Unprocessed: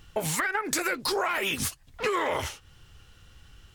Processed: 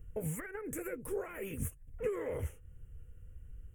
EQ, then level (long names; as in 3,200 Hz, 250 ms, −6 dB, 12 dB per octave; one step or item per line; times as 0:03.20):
Butterworth band-reject 4,400 Hz, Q 0.64
guitar amp tone stack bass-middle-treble 10-0-1
parametric band 480 Hz +13.5 dB 0.41 octaves
+10.5 dB